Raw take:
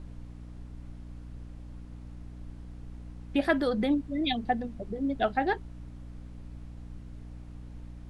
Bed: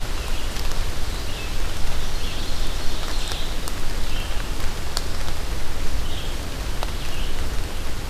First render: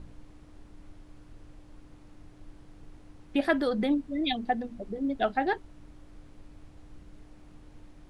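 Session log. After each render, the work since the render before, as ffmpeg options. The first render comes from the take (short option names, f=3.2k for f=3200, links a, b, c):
-af "bandreject=f=60:t=h:w=4,bandreject=f=120:t=h:w=4,bandreject=f=180:t=h:w=4,bandreject=f=240:t=h:w=4"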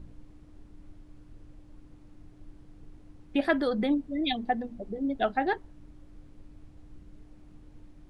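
-af "afftdn=nr=6:nf=-53"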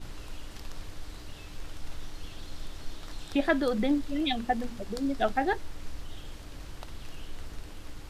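-filter_complex "[1:a]volume=-17dB[a];[0:a][a]amix=inputs=2:normalize=0"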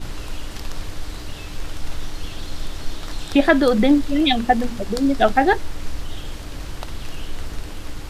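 -af "volume=11.5dB,alimiter=limit=-3dB:level=0:latency=1"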